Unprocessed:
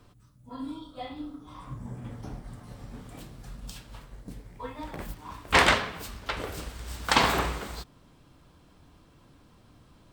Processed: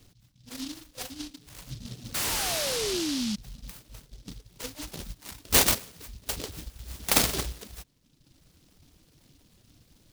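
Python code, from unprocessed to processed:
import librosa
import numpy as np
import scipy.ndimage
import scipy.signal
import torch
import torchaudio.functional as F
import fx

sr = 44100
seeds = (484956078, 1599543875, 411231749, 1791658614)

y = fx.dereverb_blind(x, sr, rt60_s=1.1)
y = fx.spec_paint(y, sr, seeds[0], shape='fall', start_s=2.14, length_s=1.22, low_hz=200.0, high_hz=1200.0, level_db=-29.0)
y = fx.noise_mod_delay(y, sr, seeds[1], noise_hz=4200.0, depth_ms=0.31)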